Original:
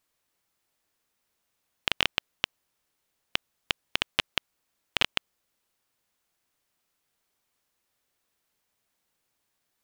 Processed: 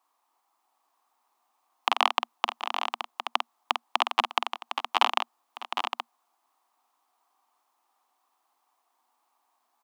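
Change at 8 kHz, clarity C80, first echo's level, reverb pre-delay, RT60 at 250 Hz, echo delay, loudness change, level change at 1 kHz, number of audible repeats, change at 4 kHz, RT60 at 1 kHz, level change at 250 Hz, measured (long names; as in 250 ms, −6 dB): −1.5 dB, no reverb audible, −7.5 dB, no reverb audible, no reverb audible, 49 ms, +1.5 dB, +15.0 dB, 4, −1.0 dB, no reverb audible, −1.5 dB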